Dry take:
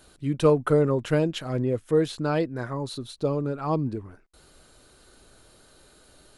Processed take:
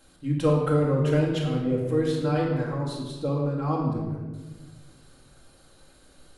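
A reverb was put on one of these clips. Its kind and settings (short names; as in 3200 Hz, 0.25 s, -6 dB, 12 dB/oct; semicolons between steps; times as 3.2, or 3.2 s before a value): shoebox room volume 940 m³, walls mixed, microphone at 2.2 m; gain -5.5 dB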